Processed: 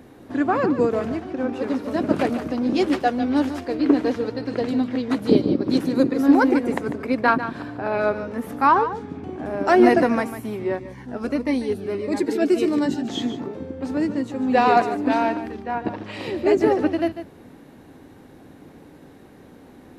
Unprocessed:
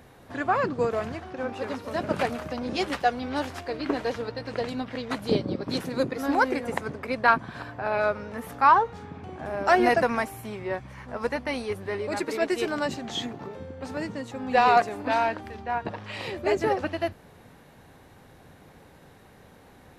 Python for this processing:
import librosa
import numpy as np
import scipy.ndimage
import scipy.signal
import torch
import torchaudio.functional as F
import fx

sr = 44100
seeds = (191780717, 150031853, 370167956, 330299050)

y = fx.peak_eq(x, sr, hz=290.0, db=13.0, octaves=1.1)
y = y + 10.0 ** (-11.5 / 20.0) * np.pad(y, (int(147 * sr / 1000.0), 0))[:len(y)]
y = fx.notch_cascade(y, sr, direction='falling', hz=1.6, at=(10.79, 13.09))